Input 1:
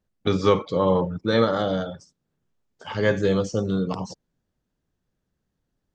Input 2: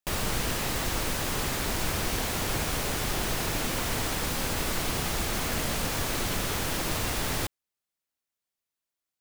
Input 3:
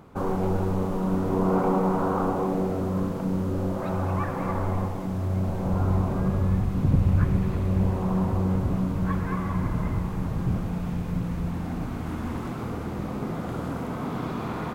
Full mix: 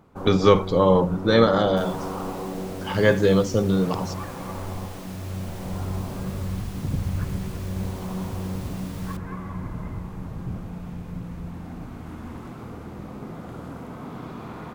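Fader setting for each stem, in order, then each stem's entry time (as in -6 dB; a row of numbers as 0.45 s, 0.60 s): +3.0 dB, -14.5 dB, -6.0 dB; 0.00 s, 1.70 s, 0.00 s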